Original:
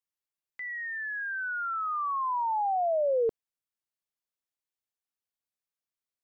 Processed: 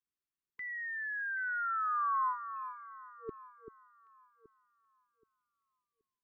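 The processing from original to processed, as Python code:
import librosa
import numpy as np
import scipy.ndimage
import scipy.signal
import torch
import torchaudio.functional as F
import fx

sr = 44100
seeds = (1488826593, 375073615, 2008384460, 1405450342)

y = fx.high_shelf(x, sr, hz=2000.0, db=-11.5)
y = fx.over_compress(y, sr, threshold_db=-30.0, ratio=-0.5)
y = fx.brickwall_bandstop(y, sr, low_hz=450.0, high_hz=1000.0)
y = fx.echo_alternate(y, sr, ms=388, hz=1200.0, feedback_pct=53, wet_db=-9)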